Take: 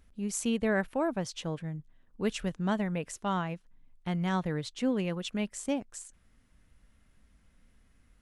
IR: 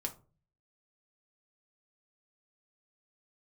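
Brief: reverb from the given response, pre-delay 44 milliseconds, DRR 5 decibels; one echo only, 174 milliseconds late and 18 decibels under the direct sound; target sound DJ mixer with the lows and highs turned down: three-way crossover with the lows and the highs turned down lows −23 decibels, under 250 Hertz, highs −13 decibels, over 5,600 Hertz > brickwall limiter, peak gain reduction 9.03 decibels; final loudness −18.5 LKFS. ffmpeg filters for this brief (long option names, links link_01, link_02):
-filter_complex "[0:a]aecho=1:1:174:0.126,asplit=2[link_01][link_02];[1:a]atrim=start_sample=2205,adelay=44[link_03];[link_02][link_03]afir=irnorm=-1:irlink=0,volume=-5dB[link_04];[link_01][link_04]amix=inputs=2:normalize=0,acrossover=split=250 5600:gain=0.0708 1 0.224[link_05][link_06][link_07];[link_05][link_06][link_07]amix=inputs=3:normalize=0,volume=18.5dB,alimiter=limit=-6.5dB:level=0:latency=1"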